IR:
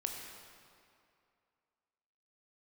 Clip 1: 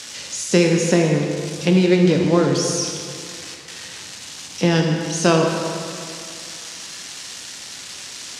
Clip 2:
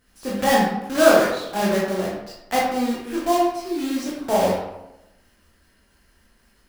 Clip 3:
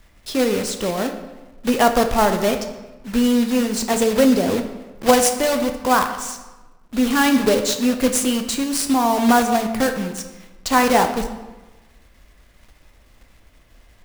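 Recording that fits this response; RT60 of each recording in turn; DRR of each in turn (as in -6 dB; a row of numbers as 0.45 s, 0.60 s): 1; 2.5 s, 0.90 s, 1.2 s; 1.5 dB, -6.5 dB, 6.0 dB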